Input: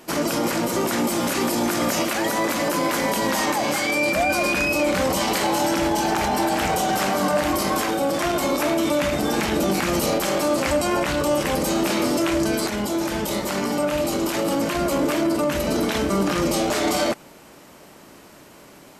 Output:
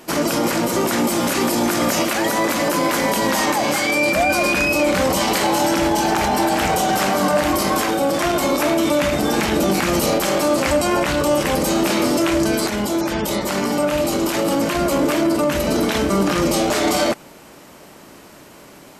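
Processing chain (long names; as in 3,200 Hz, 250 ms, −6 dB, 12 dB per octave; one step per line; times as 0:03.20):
0:13.01–0:13.52: gate on every frequency bin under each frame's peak −30 dB strong
level +3.5 dB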